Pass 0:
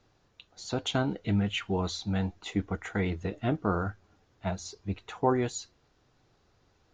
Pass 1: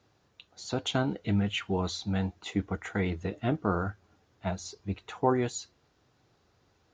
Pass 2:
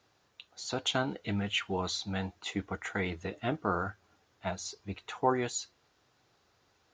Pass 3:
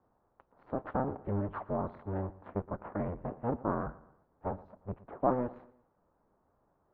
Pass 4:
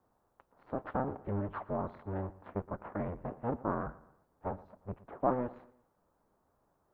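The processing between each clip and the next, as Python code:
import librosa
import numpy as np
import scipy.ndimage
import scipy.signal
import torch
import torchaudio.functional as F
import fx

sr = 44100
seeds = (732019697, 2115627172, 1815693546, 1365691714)

y1 = scipy.signal.sosfilt(scipy.signal.butter(2, 59.0, 'highpass', fs=sr, output='sos'), x)
y2 = fx.low_shelf(y1, sr, hz=460.0, db=-9.5)
y2 = F.gain(torch.from_numpy(y2), 2.0).numpy()
y3 = fx.cycle_switch(y2, sr, every=2, mode='inverted')
y3 = scipy.signal.sosfilt(scipy.signal.butter(4, 1100.0, 'lowpass', fs=sr, output='sos'), y3)
y3 = fx.echo_feedback(y3, sr, ms=117, feedback_pct=40, wet_db=-19.0)
y4 = fx.high_shelf(y3, sr, hz=2400.0, db=8.0)
y4 = F.gain(torch.from_numpy(y4), -2.0).numpy()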